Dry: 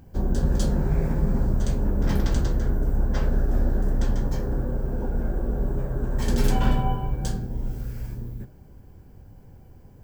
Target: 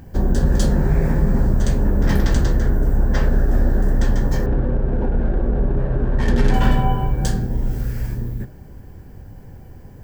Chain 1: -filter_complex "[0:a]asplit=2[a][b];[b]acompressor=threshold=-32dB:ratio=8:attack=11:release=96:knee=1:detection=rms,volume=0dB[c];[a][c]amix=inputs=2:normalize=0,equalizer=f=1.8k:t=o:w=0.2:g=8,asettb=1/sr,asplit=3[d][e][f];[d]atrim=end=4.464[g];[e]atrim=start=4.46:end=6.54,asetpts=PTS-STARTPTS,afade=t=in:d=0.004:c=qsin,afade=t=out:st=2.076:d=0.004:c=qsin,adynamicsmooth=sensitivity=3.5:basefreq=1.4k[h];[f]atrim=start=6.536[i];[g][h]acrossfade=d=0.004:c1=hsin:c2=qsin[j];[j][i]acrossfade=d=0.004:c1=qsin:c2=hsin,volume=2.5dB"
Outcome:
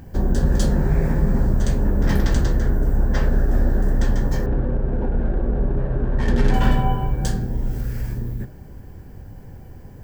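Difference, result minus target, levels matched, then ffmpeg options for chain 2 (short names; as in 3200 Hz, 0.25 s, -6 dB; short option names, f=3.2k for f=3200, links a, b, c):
compressor: peak gain reduction +6.5 dB
-filter_complex "[0:a]asplit=2[a][b];[b]acompressor=threshold=-24.5dB:ratio=8:attack=11:release=96:knee=1:detection=rms,volume=0dB[c];[a][c]amix=inputs=2:normalize=0,equalizer=f=1.8k:t=o:w=0.2:g=8,asettb=1/sr,asplit=3[d][e][f];[d]atrim=end=4.464[g];[e]atrim=start=4.46:end=6.54,asetpts=PTS-STARTPTS,afade=t=in:d=0.004:c=qsin,afade=t=out:st=2.076:d=0.004:c=qsin,adynamicsmooth=sensitivity=3.5:basefreq=1.4k[h];[f]atrim=start=6.536[i];[g][h]acrossfade=d=0.004:c1=hsin:c2=qsin[j];[j][i]acrossfade=d=0.004:c1=qsin:c2=hsin,volume=2.5dB"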